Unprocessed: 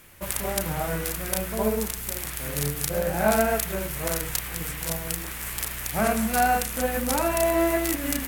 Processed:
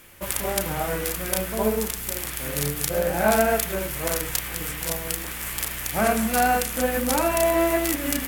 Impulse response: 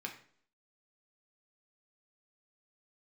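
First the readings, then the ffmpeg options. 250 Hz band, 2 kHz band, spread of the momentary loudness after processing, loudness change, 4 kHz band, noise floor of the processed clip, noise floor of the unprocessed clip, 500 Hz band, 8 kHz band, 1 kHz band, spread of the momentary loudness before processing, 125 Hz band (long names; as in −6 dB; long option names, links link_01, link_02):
+1.0 dB, +2.0 dB, 7 LU, +2.0 dB, +2.5 dB, −33 dBFS, −35 dBFS, +2.5 dB, +2.0 dB, +1.5 dB, 8 LU, −0.5 dB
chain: -filter_complex "[0:a]asplit=2[link_01][link_02];[1:a]atrim=start_sample=2205,asetrate=61740,aresample=44100[link_03];[link_02][link_03]afir=irnorm=-1:irlink=0,volume=-4dB[link_04];[link_01][link_04]amix=inputs=2:normalize=0"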